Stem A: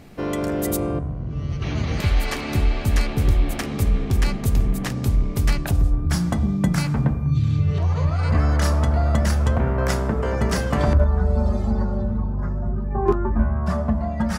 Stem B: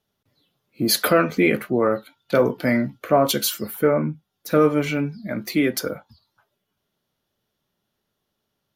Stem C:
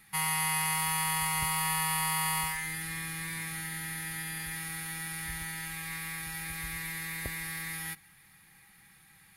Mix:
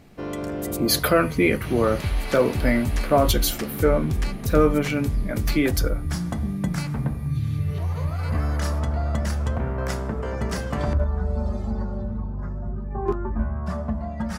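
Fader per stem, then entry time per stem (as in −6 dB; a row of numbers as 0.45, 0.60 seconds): −5.5, −1.5, −17.0 decibels; 0.00, 0.00, 0.85 seconds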